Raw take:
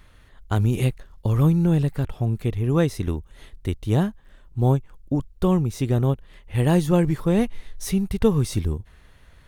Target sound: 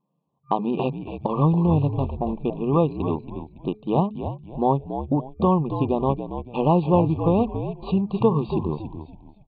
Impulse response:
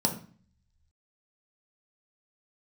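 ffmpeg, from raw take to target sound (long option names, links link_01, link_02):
-filter_complex "[0:a]anlmdn=6.31,afftfilt=real='re*(1-between(b*sr/4096,1200,2400))':imag='im*(1-between(b*sr/4096,1200,2400))':win_size=4096:overlap=0.75,acrossover=split=2600[link_01][link_02];[link_02]acompressor=threshold=-50dB:ratio=4:attack=1:release=60[link_03];[link_01][link_03]amix=inputs=2:normalize=0,afftfilt=real='re*between(b*sr/4096,130,4700)':imag='im*between(b*sr/4096,130,4700)':win_size=4096:overlap=0.75,equalizer=frequency=930:width_type=o:width=1.2:gain=11,bandreject=frequency=212.7:width_type=h:width=4,bandreject=frequency=425.4:width_type=h:width=4,acompressor=threshold=-42dB:ratio=1.5,asplit=5[link_04][link_05][link_06][link_07][link_08];[link_05]adelay=280,afreqshift=-63,volume=-9dB[link_09];[link_06]adelay=560,afreqshift=-126,volume=-18.9dB[link_10];[link_07]adelay=840,afreqshift=-189,volume=-28.8dB[link_11];[link_08]adelay=1120,afreqshift=-252,volume=-38.7dB[link_12];[link_04][link_09][link_10][link_11][link_12]amix=inputs=5:normalize=0,volume=8.5dB"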